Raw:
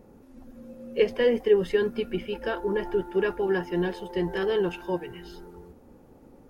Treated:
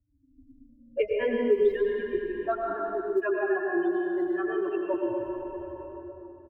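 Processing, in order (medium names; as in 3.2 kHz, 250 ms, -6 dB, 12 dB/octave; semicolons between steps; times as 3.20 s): expander on every frequency bin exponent 3; 2.27–4.94 s: high-pass 310 Hz 12 dB/octave; level-controlled noise filter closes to 400 Hz, open at -27 dBFS; low-pass 2.7 kHz 24 dB/octave; comb 2.9 ms, depth 81%; short-mantissa float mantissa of 8-bit; small resonant body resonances 590/1200 Hz, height 12 dB, ringing for 50 ms; reverberation RT60 2.1 s, pre-delay 83 ms, DRR -0.5 dB; three bands compressed up and down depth 70%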